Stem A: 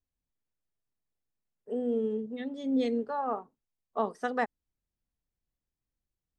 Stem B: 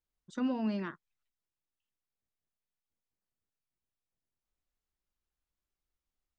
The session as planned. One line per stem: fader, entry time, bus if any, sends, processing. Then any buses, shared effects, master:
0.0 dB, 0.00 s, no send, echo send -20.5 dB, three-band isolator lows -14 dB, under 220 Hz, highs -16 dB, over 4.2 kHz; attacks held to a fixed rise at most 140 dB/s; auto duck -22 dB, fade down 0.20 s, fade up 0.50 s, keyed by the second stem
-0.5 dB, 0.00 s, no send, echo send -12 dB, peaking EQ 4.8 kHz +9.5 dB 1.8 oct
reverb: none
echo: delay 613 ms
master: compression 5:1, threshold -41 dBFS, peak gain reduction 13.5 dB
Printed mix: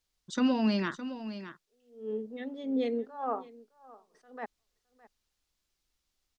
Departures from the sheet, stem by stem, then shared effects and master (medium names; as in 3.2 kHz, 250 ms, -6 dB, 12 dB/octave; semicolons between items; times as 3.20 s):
stem B -0.5 dB -> +5.5 dB; master: missing compression 5:1, threshold -41 dBFS, peak gain reduction 13.5 dB